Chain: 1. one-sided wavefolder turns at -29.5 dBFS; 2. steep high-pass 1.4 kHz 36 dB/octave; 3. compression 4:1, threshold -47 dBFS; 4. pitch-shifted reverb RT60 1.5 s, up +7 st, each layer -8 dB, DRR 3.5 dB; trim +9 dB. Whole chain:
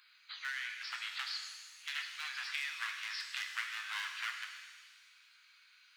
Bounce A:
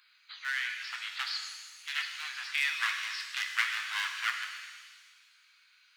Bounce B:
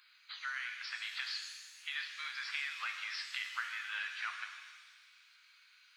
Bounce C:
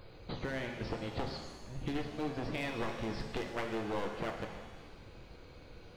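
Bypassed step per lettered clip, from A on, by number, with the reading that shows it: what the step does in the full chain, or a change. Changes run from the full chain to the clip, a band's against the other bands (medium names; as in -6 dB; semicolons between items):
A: 3, crest factor change +2.5 dB; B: 1, 8 kHz band -3.5 dB; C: 2, 1 kHz band +13.0 dB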